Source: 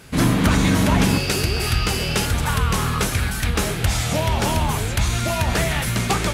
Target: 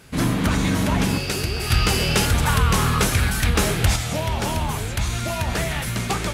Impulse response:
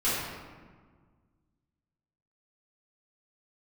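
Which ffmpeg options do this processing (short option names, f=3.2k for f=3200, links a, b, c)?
-filter_complex "[0:a]asettb=1/sr,asplit=3[a][b][c];[a]atrim=end=1.704[d];[b]atrim=start=1.7:end=3.96,asetpts=PTS-STARTPTS,afade=t=in:d=0.004:c=qsin,afade=t=out:st=2.256:d=0.004:c=qsin,acontrast=49[e];[c]atrim=start=3.956[f];[d][e]acrossfade=d=0.004:c1=hsin:c2=qsin[g];[g][f]acrossfade=d=0.004:c1=qsin:c2=hsin,volume=-3.5dB"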